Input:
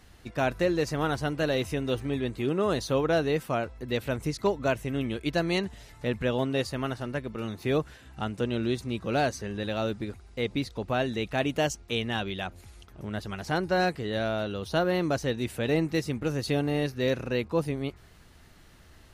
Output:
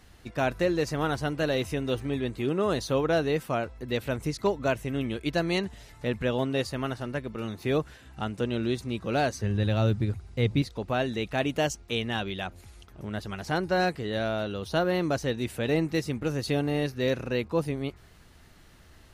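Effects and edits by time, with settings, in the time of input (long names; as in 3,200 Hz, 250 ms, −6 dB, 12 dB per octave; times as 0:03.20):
0:09.42–0:10.62: parametric band 110 Hz +13.5 dB 1.3 octaves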